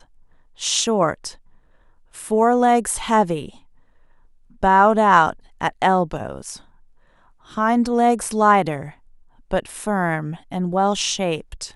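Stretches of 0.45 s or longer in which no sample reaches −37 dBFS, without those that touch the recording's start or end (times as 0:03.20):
0:01.35–0:02.15
0:03.56–0:04.63
0:06.61–0:07.50
0:08.92–0:09.51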